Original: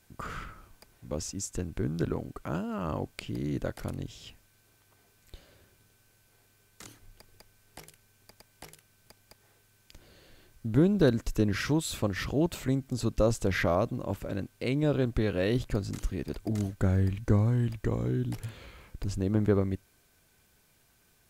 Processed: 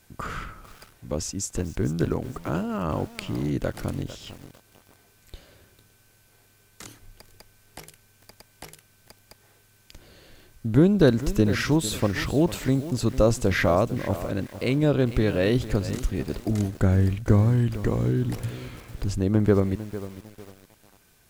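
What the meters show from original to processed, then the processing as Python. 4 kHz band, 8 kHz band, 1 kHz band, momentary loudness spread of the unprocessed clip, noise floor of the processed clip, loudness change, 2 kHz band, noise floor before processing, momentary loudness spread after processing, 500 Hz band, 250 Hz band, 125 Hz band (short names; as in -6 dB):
+5.5 dB, +5.5 dB, +5.5 dB, 14 LU, -60 dBFS, +5.5 dB, +5.5 dB, -66 dBFS, 14 LU, +5.5 dB, +5.5 dB, +5.5 dB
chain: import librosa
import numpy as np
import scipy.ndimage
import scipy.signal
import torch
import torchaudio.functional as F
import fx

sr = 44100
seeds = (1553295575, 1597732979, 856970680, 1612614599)

y = fx.echo_crushed(x, sr, ms=451, feedback_pct=35, bits=7, wet_db=-13.5)
y = y * librosa.db_to_amplitude(5.5)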